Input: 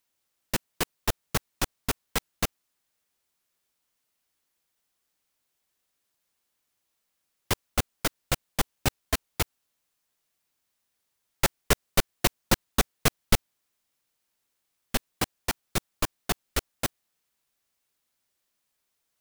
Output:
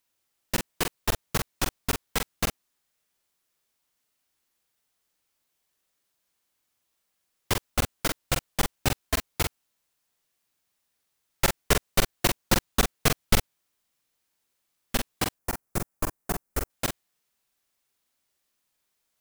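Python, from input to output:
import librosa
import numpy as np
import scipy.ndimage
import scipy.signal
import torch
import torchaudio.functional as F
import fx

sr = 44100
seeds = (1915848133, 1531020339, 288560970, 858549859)

y = fx.peak_eq(x, sr, hz=3500.0, db=-13.5, octaves=1.4, at=(15.34, 16.7))
y = fx.doubler(y, sr, ms=45.0, db=-5.0)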